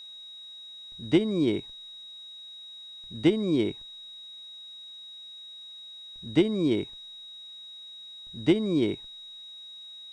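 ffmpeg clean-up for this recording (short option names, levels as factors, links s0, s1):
-af "bandreject=f=3800:w=30,agate=range=0.0891:threshold=0.0141"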